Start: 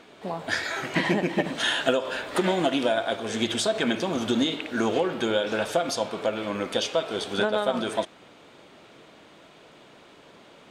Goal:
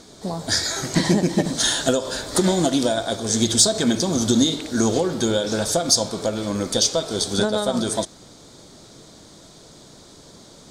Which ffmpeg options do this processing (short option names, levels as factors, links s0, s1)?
-af "aemphasis=mode=reproduction:type=riaa,aexciter=amount=12.2:drive=9.3:freq=4300"